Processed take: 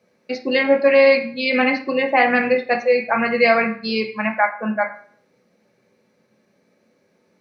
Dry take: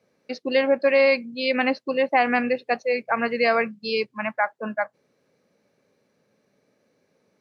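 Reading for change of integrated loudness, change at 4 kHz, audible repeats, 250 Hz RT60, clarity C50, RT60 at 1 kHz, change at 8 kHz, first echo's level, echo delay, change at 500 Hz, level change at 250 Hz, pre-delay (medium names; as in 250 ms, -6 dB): +5.0 dB, +3.5 dB, no echo, 0.60 s, 10.0 dB, 0.50 s, no reading, no echo, no echo, +4.5 dB, +5.5 dB, 3 ms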